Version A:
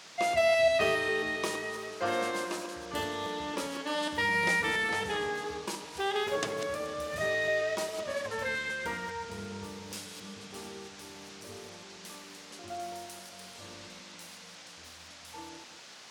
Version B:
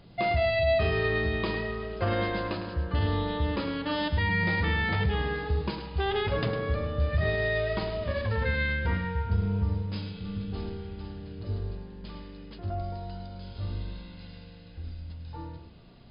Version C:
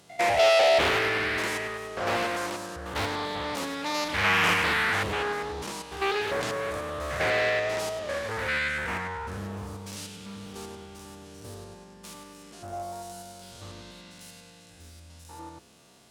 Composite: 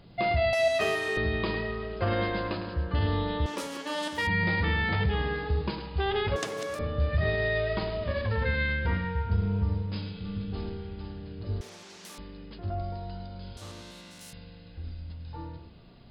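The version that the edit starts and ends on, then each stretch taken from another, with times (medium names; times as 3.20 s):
B
0.53–1.17 s: from A
3.46–4.27 s: from A
6.36–6.79 s: from A
11.61–12.18 s: from A
13.57–14.33 s: from C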